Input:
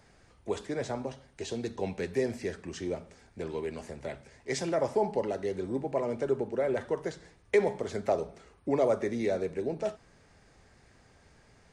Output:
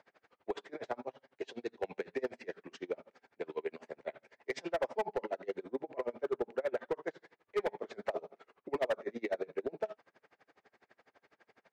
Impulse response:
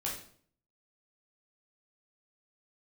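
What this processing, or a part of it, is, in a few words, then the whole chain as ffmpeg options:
helicopter radio: -af "highpass=390,lowpass=2.9k,aeval=exprs='val(0)*pow(10,-31*(0.5-0.5*cos(2*PI*12*n/s))/20)':c=same,asoftclip=type=hard:threshold=-30.5dB,volume=3.5dB"

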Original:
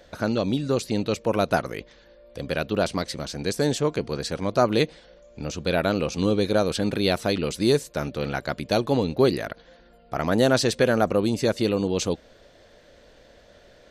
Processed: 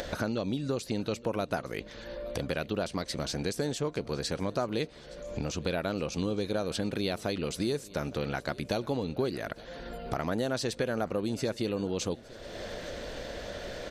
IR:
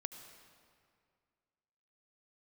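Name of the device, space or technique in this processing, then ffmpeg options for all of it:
upward and downward compression: -af "acompressor=mode=upward:threshold=-26dB:ratio=2.5,acompressor=threshold=-29dB:ratio=4,aecho=1:1:867|1734|2601|3468:0.0891|0.0481|0.026|0.014"

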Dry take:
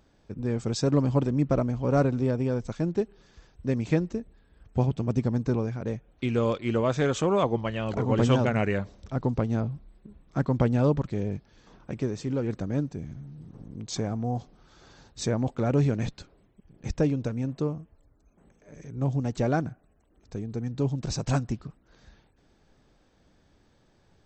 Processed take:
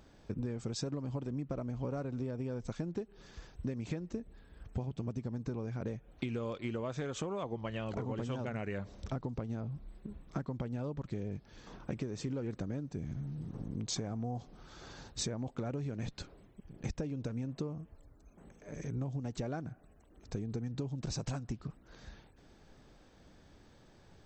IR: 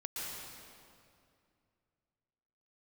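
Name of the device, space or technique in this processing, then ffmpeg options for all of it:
serial compression, leveller first: -af "acompressor=threshold=-27dB:ratio=2,acompressor=threshold=-37dB:ratio=10,volume=3dB"

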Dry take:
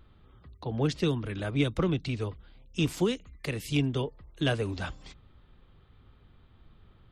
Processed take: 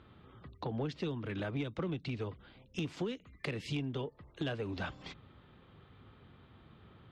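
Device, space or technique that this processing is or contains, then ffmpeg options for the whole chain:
AM radio: -af "highpass=110,lowpass=3.9k,acompressor=threshold=-39dB:ratio=4,asoftclip=type=tanh:threshold=-30.5dB,volume=4.5dB"

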